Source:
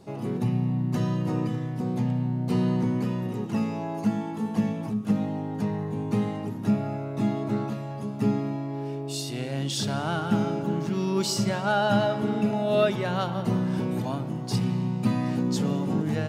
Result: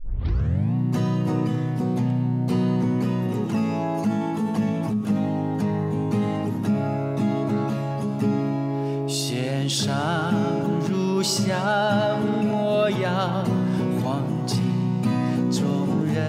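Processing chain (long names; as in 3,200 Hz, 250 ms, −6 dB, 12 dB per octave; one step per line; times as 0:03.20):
turntable start at the beginning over 0.75 s
envelope flattener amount 50%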